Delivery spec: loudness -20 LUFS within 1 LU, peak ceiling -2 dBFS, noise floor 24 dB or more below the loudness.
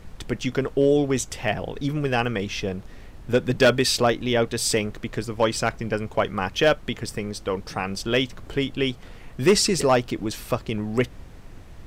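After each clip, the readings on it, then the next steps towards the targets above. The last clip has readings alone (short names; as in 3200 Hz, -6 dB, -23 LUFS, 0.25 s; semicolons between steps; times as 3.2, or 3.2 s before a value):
clipped 0.2%; flat tops at -10.5 dBFS; noise floor -43 dBFS; noise floor target -48 dBFS; loudness -24.0 LUFS; peak -10.5 dBFS; loudness target -20.0 LUFS
-> clip repair -10.5 dBFS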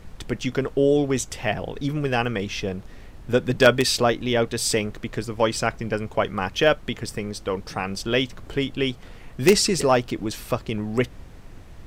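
clipped 0.0%; noise floor -43 dBFS; noise floor target -48 dBFS
-> noise print and reduce 6 dB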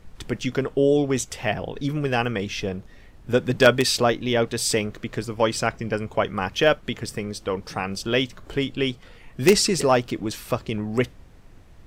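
noise floor -48 dBFS; loudness -23.5 LUFS; peak -1.5 dBFS; loudness target -20.0 LUFS
-> gain +3.5 dB; limiter -2 dBFS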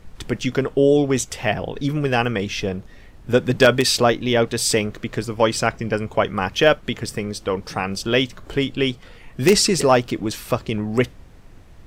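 loudness -20.5 LUFS; peak -2.0 dBFS; noise floor -45 dBFS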